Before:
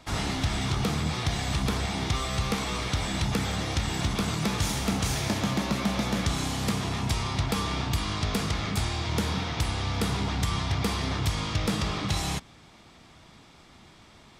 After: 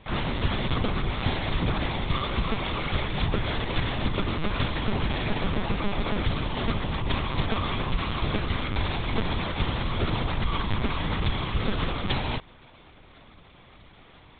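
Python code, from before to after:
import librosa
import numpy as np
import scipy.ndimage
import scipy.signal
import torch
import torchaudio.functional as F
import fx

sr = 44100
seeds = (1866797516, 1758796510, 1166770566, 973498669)

y = fx.lpc_vocoder(x, sr, seeds[0], excitation='pitch_kept', order=10)
y = y * librosa.db_to_amplitude(2.0)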